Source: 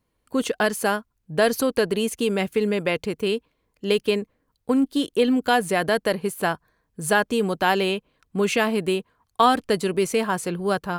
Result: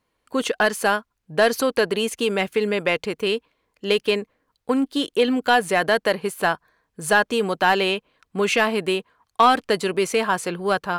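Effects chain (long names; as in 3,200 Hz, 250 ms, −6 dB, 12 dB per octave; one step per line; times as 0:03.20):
mid-hump overdrive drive 10 dB, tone 4,600 Hz, clips at −4 dBFS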